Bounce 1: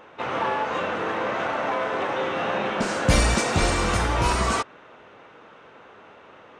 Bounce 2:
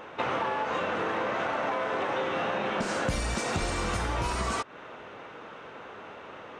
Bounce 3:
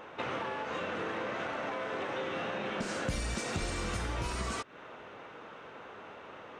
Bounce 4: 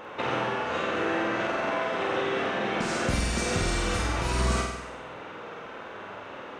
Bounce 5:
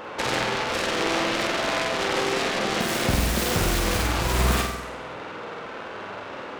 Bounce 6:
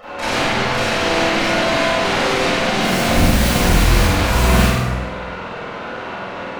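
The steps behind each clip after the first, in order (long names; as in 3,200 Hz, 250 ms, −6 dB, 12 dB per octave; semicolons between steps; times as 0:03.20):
downward compressor 12 to 1, threshold −30 dBFS, peak gain reduction 17 dB; level +4 dB
dynamic equaliser 880 Hz, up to −5 dB, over −42 dBFS, Q 1.1; level −4 dB
flutter between parallel walls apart 8.3 metres, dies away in 0.9 s; level +5 dB
phase distortion by the signal itself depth 0.53 ms; level +5 dB
convolution reverb RT60 0.95 s, pre-delay 27 ms, DRR −12 dB; level −7 dB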